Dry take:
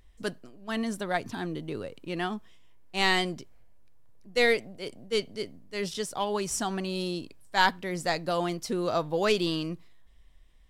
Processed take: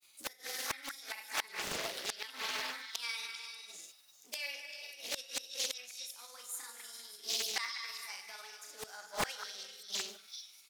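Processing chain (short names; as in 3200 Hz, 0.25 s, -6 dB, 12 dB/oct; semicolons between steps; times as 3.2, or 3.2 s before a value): delay-line pitch shifter +3.5 st; HPF 230 Hz 6 dB/oct; differentiator; doubler 42 ms -6.5 dB; non-linear reverb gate 0.47 s flat, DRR 4.5 dB; grains 0.1 s, grains 20/s, spray 27 ms, pitch spread up and down by 0 st; dynamic EQ 1800 Hz, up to +5 dB, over -53 dBFS, Q 1.1; flipped gate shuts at -36 dBFS, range -25 dB; delay with a stepping band-pass 0.197 s, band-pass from 1700 Hz, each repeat 1.4 oct, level -6 dB; Doppler distortion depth 0.86 ms; gain +17.5 dB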